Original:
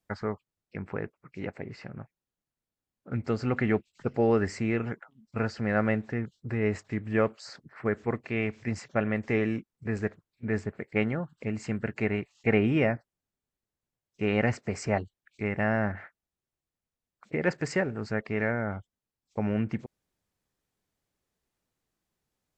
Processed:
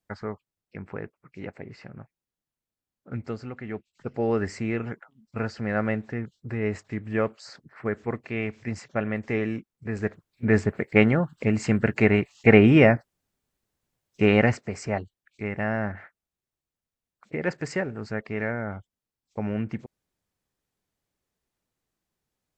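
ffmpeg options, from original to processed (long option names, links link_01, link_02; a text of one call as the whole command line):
ffmpeg -i in.wav -af "volume=20dB,afade=type=out:start_time=3.16:duration=0.41:silence=0.281838,afade=type=in:start_time=3.57:duration=0.86:silence=0.237137,afade=type=in:start_time=9.94:duration=0.56:silence=0.354813,afade=type=out:start_time=14.22:duration=0.46:silence=0.334965" out.wav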